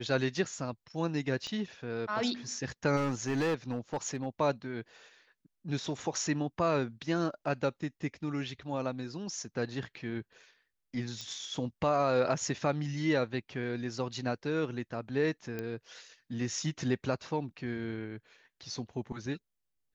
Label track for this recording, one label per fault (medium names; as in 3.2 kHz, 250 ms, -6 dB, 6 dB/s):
1.470000	1.470000	pop -28 dBFS
2.960000	4.270000	clipped -27 dBFS
11.210000	11.210000	pop -26 dBFS
15.590000	15.590000	pop -23 dBFS